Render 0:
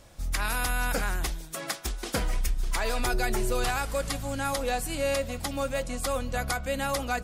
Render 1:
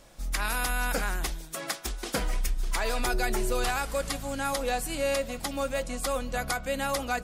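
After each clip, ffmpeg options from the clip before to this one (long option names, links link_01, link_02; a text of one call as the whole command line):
ffmpeg -i in.wav -af "equalizer=frequency=88:width_type=o:width=0.76:gain=-12" out.wav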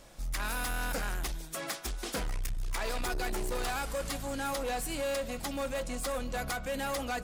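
ffmpeg -i in.wav -af "asoftclip=type=tanh:threshold=-29.5dB" out.wav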